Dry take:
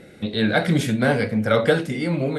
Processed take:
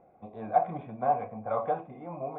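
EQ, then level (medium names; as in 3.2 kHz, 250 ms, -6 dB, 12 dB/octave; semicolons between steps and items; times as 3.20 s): cascade formant filter a; bass shelf 120 Hz +5.5 dB; dynamic bell 2.7 kHz, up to +5 dB, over -52 dBFS, Q 0.82; +5.0 dB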